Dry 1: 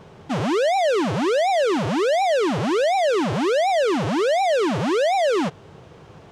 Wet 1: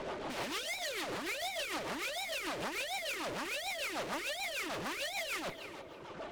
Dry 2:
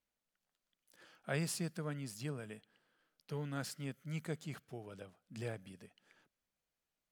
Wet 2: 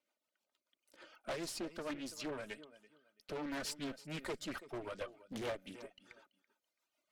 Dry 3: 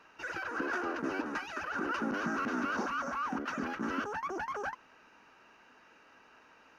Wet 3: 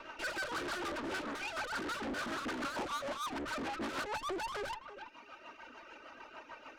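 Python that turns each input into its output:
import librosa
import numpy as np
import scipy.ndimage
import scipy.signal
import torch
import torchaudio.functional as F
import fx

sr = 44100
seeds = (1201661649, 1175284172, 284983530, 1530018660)

y = fx.rider(x, sr, range_db=4, speed_s=2.0)
y = fx.dereverb_blind(y, sr, rt60_s=1.4)
y = fx.peak_eq(y, sr, hz=610.0, db=2.0, octaves=1.6)
y = fx.fold_sine(y, sr, drive_db=17, ceiling_db=-14.0)
y = scipy.signal.sosfilt(scipy.signal.bessel(2, 400.0, 'highpass', norm='mag', fs=sr, output='sos'), y)
y = fx.high_shelf(y, sr, hz=4700.0, db=-9.5)
y = fx.notch(y, sr, hz=1700.0, q=7.7)
y = y + 0.44 * np.pad(y, (int(3.3 * sr / 1000.0), 0))[:len(y)]
y = fx.echo_feedback(y, sr, ms=332, feedback_pct=21, wet_db=-19.0)
y = fx.tube_stage(y, sr, drive_db=29.0, bias=0.5)
y = fx.rotary(y, sr, hz=6.7)
y = fx.doppler_dist(y, sr, depth_ms=0.48)
y = y * librosa.db_to_amplitude(-5.5)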